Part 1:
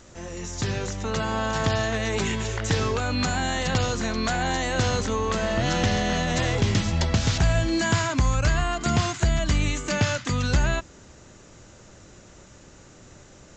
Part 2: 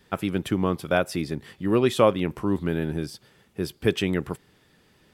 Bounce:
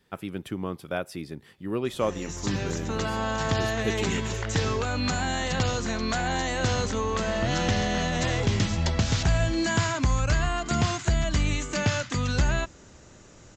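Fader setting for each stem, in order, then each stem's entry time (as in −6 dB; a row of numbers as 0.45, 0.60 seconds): −2.0, −8.0 decibels; 1.85, 0.00 seconds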